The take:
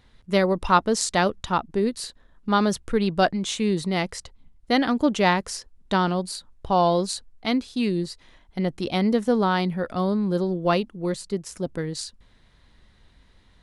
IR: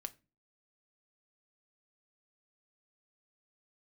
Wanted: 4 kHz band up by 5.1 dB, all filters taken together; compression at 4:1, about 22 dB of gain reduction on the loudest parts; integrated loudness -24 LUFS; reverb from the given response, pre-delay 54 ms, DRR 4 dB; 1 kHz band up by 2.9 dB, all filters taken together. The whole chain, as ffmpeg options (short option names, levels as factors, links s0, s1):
-filter_complex "[0:a]equalizer=f=1000:t=o:g=3.5,equalizer=f=4000:t=o:g=6,acompressor=threshold=0.0141:ratio=4,asplit=2[s0][s1];[1:a]atrim=start_sample=2205,adelay=54[s2];[s1][s2]afir=irnorm=-1:irlink=0,volume=0.944[s3];[s0][s3]amix=inputs=2:normalize=0,volume=4.22"